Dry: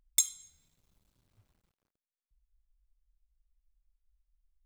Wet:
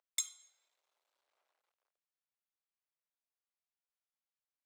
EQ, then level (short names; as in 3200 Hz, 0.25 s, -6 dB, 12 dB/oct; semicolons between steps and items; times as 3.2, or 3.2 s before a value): inverse Chebyshev high-pass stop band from 160 Hz, stop band 60 dB; high shelf 3600 Hz -7.5 dB; high shelf 9300 Hz -9.5 dB; 0.0 dB